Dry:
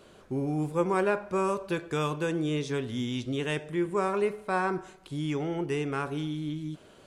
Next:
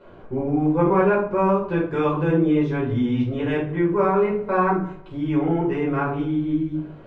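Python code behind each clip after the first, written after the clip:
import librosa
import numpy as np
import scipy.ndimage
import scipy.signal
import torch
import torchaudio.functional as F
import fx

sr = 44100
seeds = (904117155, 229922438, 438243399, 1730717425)

y = scipy.signal.sosfilt(scipy.signal.butter(2, 1700.0, 'lowpass', fs=sr, output='sos'), x)
y = fx.room_shoebox(y, sr, seeds[0], volume_m3=290.0, walls='furnished', distance_m=4.9)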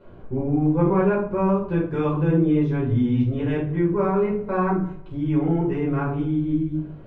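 y = fx.low_shelf(x, sr, hz=260.0, db=11.5)
y = y * librosa.db_to_amplitude(-5.5)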